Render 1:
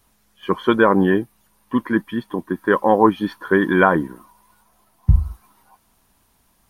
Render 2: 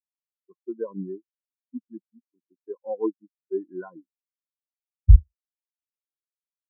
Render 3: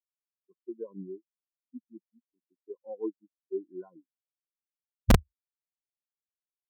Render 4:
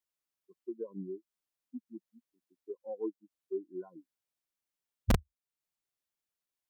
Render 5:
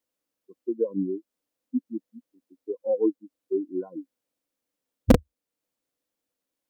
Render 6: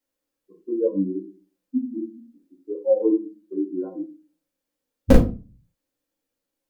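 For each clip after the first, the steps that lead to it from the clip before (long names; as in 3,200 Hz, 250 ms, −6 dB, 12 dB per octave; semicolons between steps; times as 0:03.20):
low-pass filter 2,200 Hz; every bin expanded away from the loudest bin 4 to 1
dynamic equaliser 380 Hz, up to +4 dB, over −43 dBFS, Q 3.8; Gaussian smoothing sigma 8.3 samples; wrap-around overflow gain 3.5 dB; level −8.5 dB
downward compressor 1.5 to 1, threshold −48 dBFS, peak gain reduction 11.5 dB; level +4 dB
hollow resonant body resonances 280/490 Hz, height 15 dB, ringing for 35 ms; level +4 dB
rectangular room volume 130 cubic metres, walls furnished, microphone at 2.2 metres; level −3 dB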